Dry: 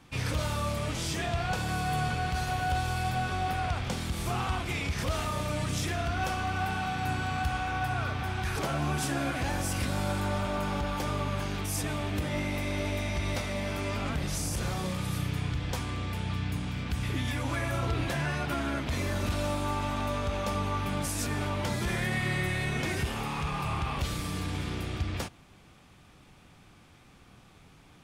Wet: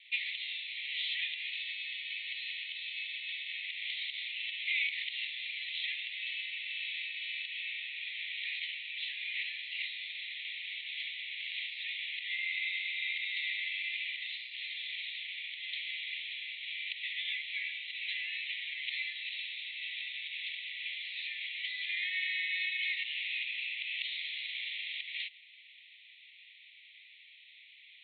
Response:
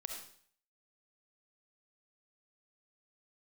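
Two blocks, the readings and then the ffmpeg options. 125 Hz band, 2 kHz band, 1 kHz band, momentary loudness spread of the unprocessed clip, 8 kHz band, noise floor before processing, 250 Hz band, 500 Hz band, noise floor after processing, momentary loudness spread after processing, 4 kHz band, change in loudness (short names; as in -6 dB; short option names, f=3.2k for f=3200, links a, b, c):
under -40 dB, +0.5 dB, under -40 dB, 3 LU, under -40 dB, -56 dBFS, under -40 dB, under -40 dB, -57 dBFS, 6 LU, +3.5 dB, -4.5 dB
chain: -af "acompressor=threshold=-32dB:ratio=6,asuperpass=centerf=2800:order=20:qfactor=1.3,volume=9dB"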